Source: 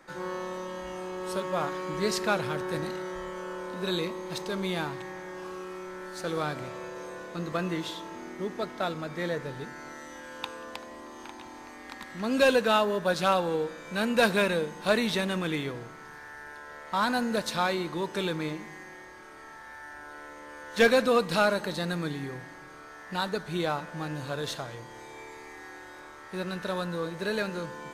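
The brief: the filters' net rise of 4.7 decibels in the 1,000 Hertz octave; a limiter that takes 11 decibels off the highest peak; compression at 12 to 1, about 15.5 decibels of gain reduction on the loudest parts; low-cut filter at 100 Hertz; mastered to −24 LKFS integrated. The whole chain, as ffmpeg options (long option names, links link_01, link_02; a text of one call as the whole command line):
ffmpeg -i in.wav -af "highpass=100,equalizer=frequency=1000:width_type=o:gain=6,acompressor=threshold=-31dB:ratio=12,volume=14dB,alimiter=limit=-13dB:level=0:latency=1" out.wav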